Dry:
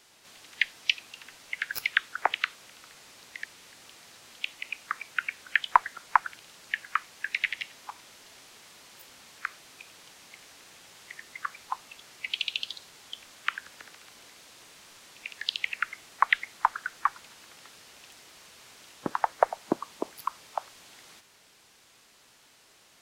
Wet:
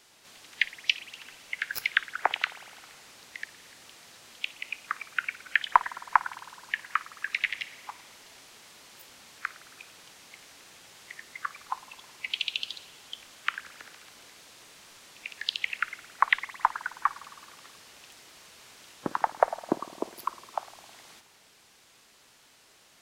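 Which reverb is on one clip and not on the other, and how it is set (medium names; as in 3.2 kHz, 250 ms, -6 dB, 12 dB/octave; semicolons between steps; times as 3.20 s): spring tank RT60 1.9 s, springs 52 ms, chirp 20 ms, DRR 16 dB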